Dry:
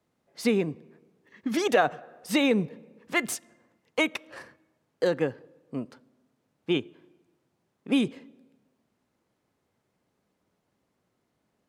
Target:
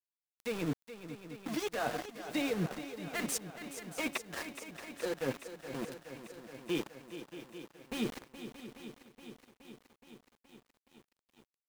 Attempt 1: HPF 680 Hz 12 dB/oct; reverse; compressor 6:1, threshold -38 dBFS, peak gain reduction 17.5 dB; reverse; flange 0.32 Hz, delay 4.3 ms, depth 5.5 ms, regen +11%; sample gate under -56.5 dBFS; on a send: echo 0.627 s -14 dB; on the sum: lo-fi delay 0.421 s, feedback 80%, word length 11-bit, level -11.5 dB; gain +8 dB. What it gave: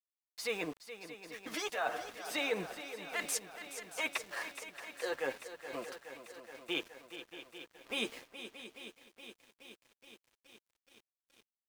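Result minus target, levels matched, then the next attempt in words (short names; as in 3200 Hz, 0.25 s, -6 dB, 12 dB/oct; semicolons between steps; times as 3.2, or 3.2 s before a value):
250 Hz band -8.0 dB; sample gate: distortion -9 dB
HPF 180 Hz 12 dB/oct; reverse; compressor 6:1, threshold -38 dBFS, peak gain reduction 20 dB; reverse; flange 0.32 Hz, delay 4.3 ms, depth 5.5 ms, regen +11%; sample gate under -45.5 dBFS; on a send: echo 0.627 s -14 dB; on the sum: lo-fi delay 0.421 s, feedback 80%, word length 11-bit, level -11.5 dB; gain +8 dB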